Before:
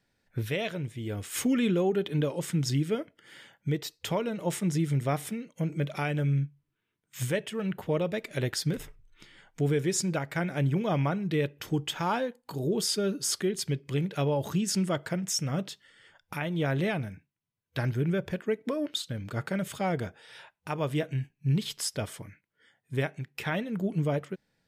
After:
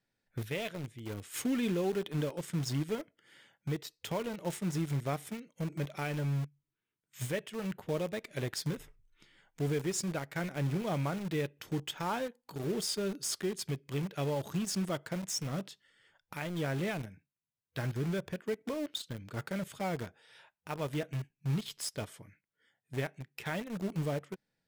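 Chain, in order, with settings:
parametric band 62 Hz −12.5 dB 0.34 octaves
in parallel at −7 dB: bit reduction 5 bits
on the sum: level −9 dB

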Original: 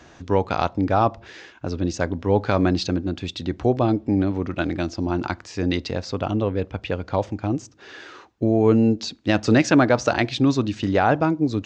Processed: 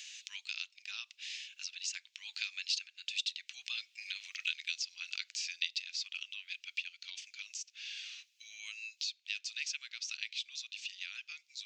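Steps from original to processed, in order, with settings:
source passing by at 0:04.38, 11 m/s, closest 12 metres
elliptic high-pass filter 2,500 Hz, stop band 80 dB
multiband upward and downward compressor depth 70%
level +6 dB

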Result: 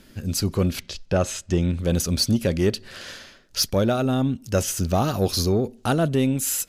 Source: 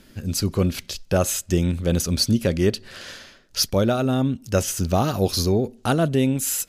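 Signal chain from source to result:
0:00.80–0:01.79: high-frequency loss of the air 75 metres
in parallel at −4.5 dB: soft clipping −16.5 dBFS, distortion −13 dB
on the sum: level −4 dB

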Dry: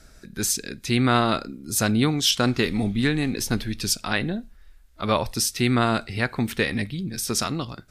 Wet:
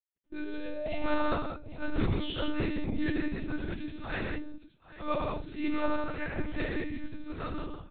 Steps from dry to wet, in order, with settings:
random phases in long frames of 100 ms
sound drawn into the spectrogram rise, 0:00.32–0:01.11, 350–850 Hz −28 dBFS
noise gate −38 dBFS, range −35 dB
on a send: multi-tap delay 95/128/168/801 ms −5/−18.5/−5.5/−16 dB
on the sum: de-essing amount 40%
low-pass filter 2,000 Hz 6 dB per octave
bit-depth reduction 12 bits, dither none
one-pitch LPC vocoder at 8 kHz 300 Hz
level −8.5 dB

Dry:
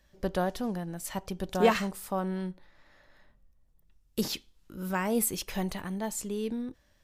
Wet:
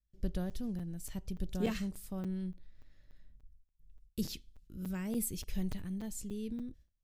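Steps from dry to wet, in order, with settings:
noise gate with hold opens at −53 dBFS
guitar amp tone stack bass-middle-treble 10-0-1
regular buffer underruns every 0.29 s, samples 256, zero, from 0:00.50
level +12 dB

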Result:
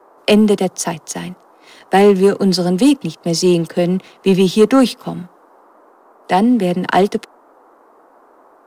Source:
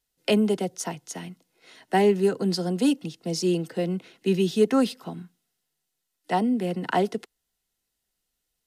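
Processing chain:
leveller curve on the samples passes 1
noise in a band 270–1,200 Hz −56 dBFS
level +7.5 dB

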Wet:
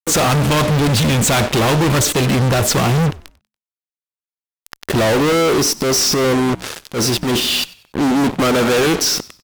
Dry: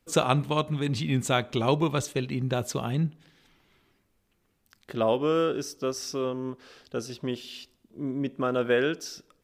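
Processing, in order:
tape wow and flutter 20 cents
fuzz pedal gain 48 dB, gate −47 dBFS
0:05.80–0:07.40: transient designer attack −9 dB, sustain +5 dB
echo with shifted repeats 95 ms, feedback 34%, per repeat −72 Hz, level −21 dB

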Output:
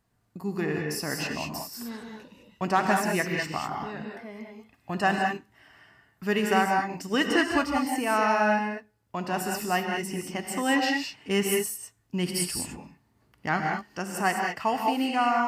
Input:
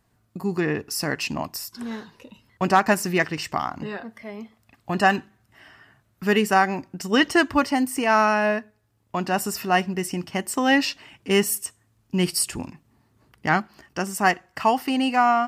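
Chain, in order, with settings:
reverb whose tail is shaped and stops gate 230 ms rising, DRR 1 dB
level −6.5 dB

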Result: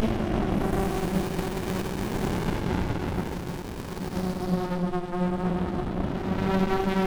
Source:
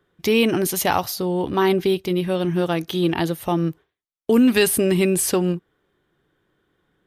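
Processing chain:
downward compressor, threshold −18 dBFS, peak gain reduction 6.5 dB
extreme stretch with random phases 5.9×, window 0.25 s, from 0:00.47
tape delay 416 ms, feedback 56%, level −7.5 dB, low-pass 1,800 Hz
windowed peak hold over 65 samples

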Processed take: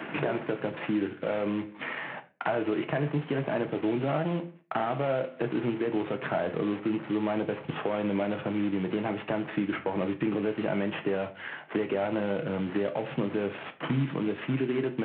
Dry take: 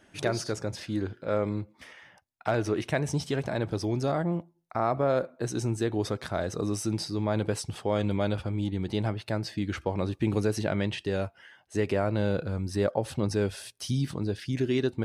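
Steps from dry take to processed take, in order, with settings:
variable-slope delta modulation 16 kbit/s
high-pass filter 160 Hz 24 dB per octave
in parallel at +1 dB: downward compressor, threshold −38 dBFS, peak gain reduction 14.5 dB
on the sum: brickwall limiter −19.5 dBFS, peak gain reduction 6.5 dB
on a send at −6.5 dB: convolution reverb RT60 0.30 s, pre-delay 6 ms
on the sum: multiband upward and downward compressor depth 70%

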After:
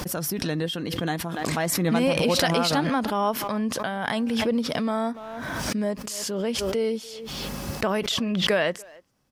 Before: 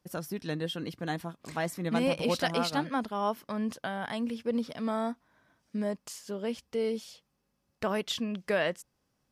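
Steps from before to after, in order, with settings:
far-end echo of a speakerphone 290 ms, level −22 dB
background raised ahead of every attack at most 23 dB per second
level +5 dB

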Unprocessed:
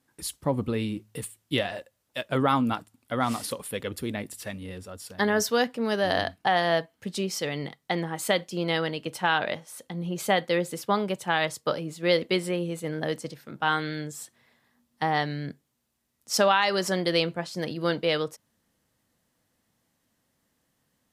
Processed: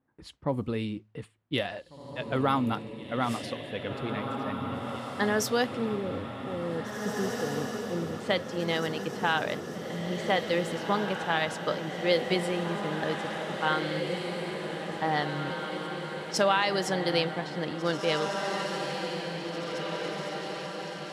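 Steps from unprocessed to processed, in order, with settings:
gain on a spectral selection 0:05.84–0:08.20, 570–11,000 Hz −25 dB
low-pass that shuts in the quiet parts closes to 1,300 Hz, open at −21.5 dBFS
feedback delay with all-pass diffusion 1,960 ms, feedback 62%, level −5 dB
level −3 dB

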